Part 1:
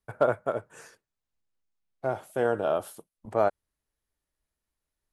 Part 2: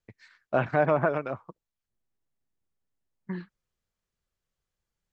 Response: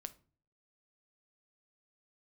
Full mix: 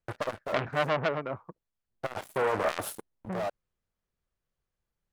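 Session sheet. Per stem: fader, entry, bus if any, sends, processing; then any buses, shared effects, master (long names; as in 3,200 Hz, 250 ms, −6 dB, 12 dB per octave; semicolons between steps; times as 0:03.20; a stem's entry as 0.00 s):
−7.0 dB, 0.00 s, no send, leveller curve on the samples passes 5; automatic ducking −9 dB, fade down 0.50 s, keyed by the second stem
+1.0 dB, 0.00 s, no send, high-shelf EQ 3,100 Hz −10 dB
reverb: not used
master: saturating transformer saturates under 2,200 Hz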